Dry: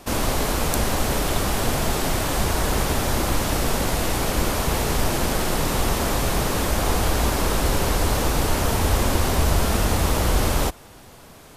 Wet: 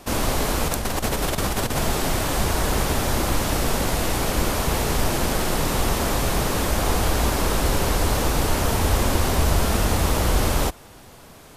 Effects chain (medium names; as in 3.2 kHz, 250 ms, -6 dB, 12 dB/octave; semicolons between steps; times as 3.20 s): 0.68–1.79 s: compressor with a negative ratio -23 dBFS, ratio -0.5